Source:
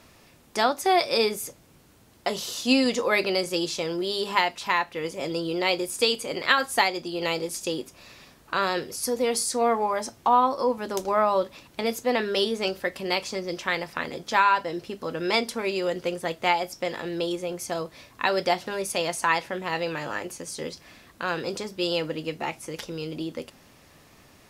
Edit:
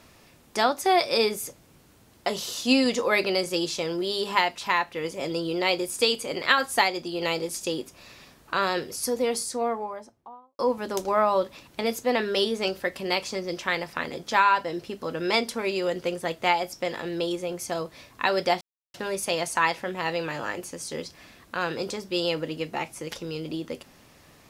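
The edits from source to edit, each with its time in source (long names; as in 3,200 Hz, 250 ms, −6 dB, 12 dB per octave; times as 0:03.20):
0:09.00–0:10.59: fade out and dull
0:18.61: splice in silence 0.33 s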